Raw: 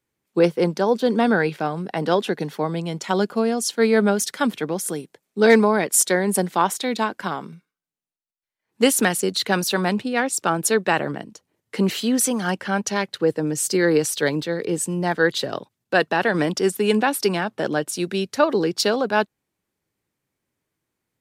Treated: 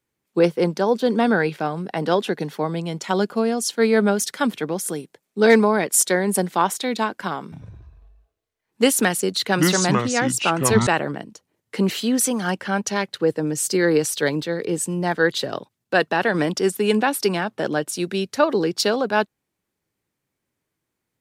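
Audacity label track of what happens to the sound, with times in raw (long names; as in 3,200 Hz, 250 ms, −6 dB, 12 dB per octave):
7.430000	10.870000	delay with pitch and tempo change per echo 90 ms, each echo −7 semitones, echoes 3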